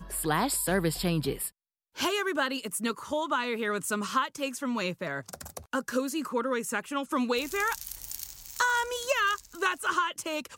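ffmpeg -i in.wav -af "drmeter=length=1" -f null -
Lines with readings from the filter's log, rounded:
Channel 1: DR: 13.1
Overall DR: 13.1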